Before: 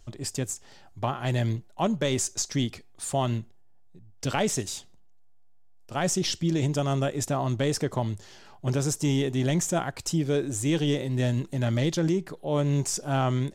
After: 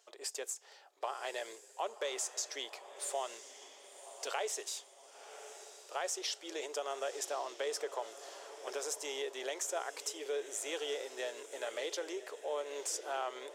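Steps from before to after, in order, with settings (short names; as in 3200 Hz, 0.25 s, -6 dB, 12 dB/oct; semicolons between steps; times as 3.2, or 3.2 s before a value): elliptic high-pass 430 Hz, stop band 60 dB; compressor 2:1, threshold -34 dBFS, peak gain reduction 6.5 dB; diffused feedback echo 1.047 s, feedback 43%, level -12.5 dB; gain -3.5 dB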